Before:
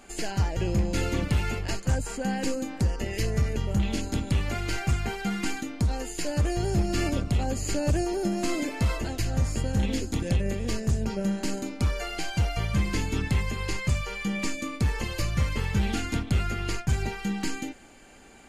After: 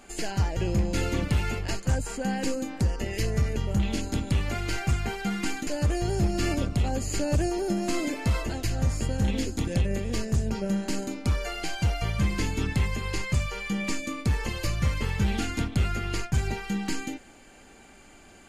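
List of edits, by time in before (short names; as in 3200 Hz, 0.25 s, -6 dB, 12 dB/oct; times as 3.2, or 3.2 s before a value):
5.67–6.22 cut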